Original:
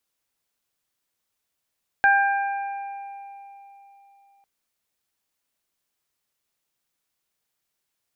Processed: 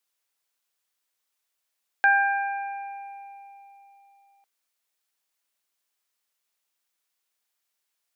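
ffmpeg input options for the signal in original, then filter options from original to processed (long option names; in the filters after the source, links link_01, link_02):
-f lavfi -i "aevalsrc='0.141*pow(10,-3*t/3.53)*sin(2*PI*796*t)+0.2*pow(10,-3*t/1.51)*sin(2*PI*1592*t)+0.0266*pow(10,-3*t/3.21)*sin(2*PI*2388*t)':duration=2.4:sample_rate=44100"
-af "highpass=frequency=720:poles=1"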